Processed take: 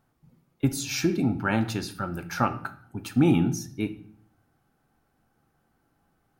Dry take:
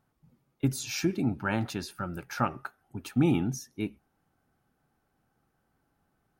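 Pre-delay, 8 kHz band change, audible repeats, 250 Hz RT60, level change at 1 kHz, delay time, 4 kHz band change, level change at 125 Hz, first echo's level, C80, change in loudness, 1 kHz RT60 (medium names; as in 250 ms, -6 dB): 3 ms, +4.0 dB, no echo, 0.75 s, +4.0 dB, no echo, +4.0 dB, +3.5 dB, no echo, 18.0 dB, +4.0 dB, 0.55 s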